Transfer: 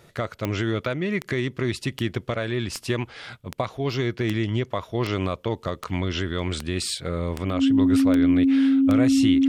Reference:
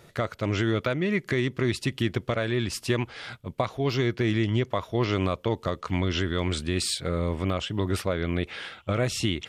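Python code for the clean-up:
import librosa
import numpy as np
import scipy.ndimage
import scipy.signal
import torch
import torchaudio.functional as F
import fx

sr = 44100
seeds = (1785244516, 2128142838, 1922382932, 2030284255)

y = fx.fix_declick_ar(x, sr, threshold=10.0)
y = fx.notch(y, sr, hz=270.0, q=30.0)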